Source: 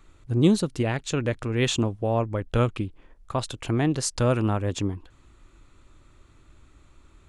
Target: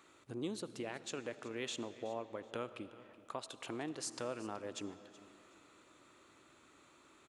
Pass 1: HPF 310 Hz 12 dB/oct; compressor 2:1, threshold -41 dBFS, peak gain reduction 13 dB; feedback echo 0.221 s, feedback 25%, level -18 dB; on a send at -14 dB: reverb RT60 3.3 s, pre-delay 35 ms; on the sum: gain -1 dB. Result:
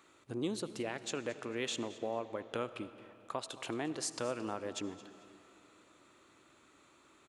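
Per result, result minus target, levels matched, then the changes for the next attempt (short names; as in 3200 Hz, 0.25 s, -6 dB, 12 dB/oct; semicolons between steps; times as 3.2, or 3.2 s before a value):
echo 0.154 s early; compressor: peak gain reduction -4 dB
change: feedback echo 0.375 s, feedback 25%, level -18 dB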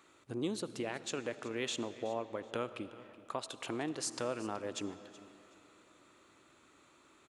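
compressor: peak gain reduction -4 dB
change: compressor 2:1, threshold -49.5 dBFS, peak gain reduction 17 dB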